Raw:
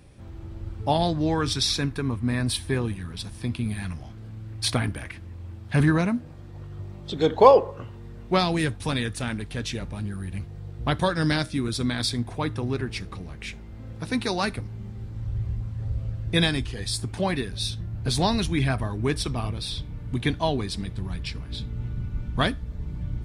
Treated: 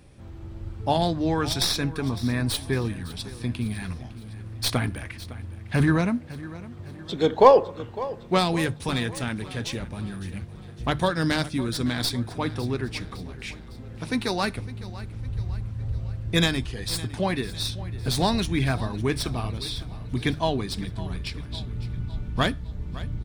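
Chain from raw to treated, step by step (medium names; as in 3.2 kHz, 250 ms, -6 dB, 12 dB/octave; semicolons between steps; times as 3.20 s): tracing distortion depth 0.044 ms; hum notches 50/100/150 Hz; feedback delay 557 ms, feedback 50%, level -17 dB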